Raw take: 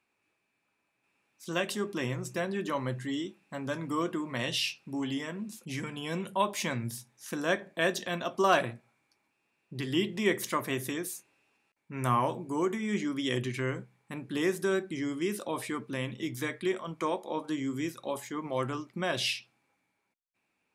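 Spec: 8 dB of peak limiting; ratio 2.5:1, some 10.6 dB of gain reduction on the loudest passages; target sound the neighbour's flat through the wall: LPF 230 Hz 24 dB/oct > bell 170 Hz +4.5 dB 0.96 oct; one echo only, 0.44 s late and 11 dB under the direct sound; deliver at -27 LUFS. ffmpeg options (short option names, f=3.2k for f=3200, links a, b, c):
-af "acompressor=threshold=-37dB:ratio=2.5,alimiter=level_in=4dB:limit=-24dB:level=0:latency=1,volume=-4dB,lowpass=f=230:w=0.5412,lowpass=f=230:w=1.3066,equalizer=f=170:t=o:w=0.96:g=4.5,aecho=1:1:440:0.282,volume=17.5dB"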